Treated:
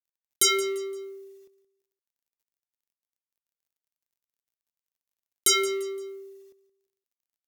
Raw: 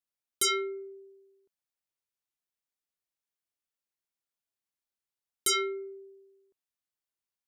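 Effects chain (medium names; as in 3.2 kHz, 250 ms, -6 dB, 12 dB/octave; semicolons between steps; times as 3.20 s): companding laws mixed up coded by mu; graphic EQ with 31 bands 1.25 kHz -4 dB, 6.3 kHz +4 dB, 16 kHz +9 dB; on a send: feedback delay 172 ms, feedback 34%, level -16.5 dB; on the sum: trim +4 dB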